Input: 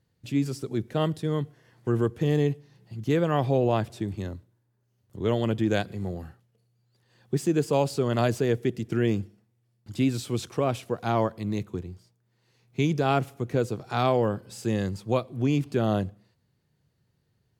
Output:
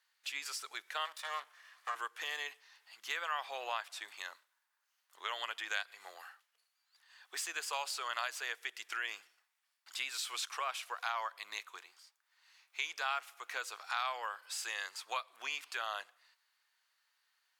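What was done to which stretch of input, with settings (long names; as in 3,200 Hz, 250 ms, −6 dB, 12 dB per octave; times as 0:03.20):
0:01.05–0:01.95: lower of the sound and its delayed copy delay 1.7 ms
whole clip: high-pass filter 1,100 Hz 24 dB per octave; high-shelf EQ 4,600 Hz −5 dB; downward compressor 2.5 to 1, threshold −44 dBFS; level +7 dB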